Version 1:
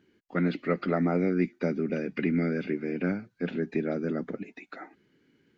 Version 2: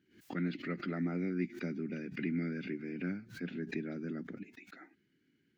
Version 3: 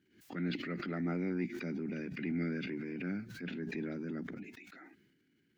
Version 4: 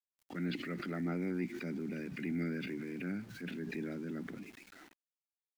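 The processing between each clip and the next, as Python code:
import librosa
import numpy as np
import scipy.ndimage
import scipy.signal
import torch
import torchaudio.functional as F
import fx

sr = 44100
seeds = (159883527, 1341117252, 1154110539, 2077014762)

y1 = scipy.signal.sosfilt(scipy.signal.butter(2, 52.0, 'highpass', fs=sr, output='sos'), x)
y1 = fx.band_shelf(y1, sr, hz=720.0, db=-9.5, octaves=1.7)
y1 = fx.pre_swell(y1, sr, db_per_s=130.0)
y1 = y1 * librosa.db_to_amplitude(-8.0)
y2 = fx.transient(y1, sr, attack_db=-5, sustain_db=7)
y3 = np.where(np.abs(y2) >= 10.0 ** (-53.5 / 20.0), y2, 0.0)
y3 = y3 * librosa.db_to_amplitude(-1.0)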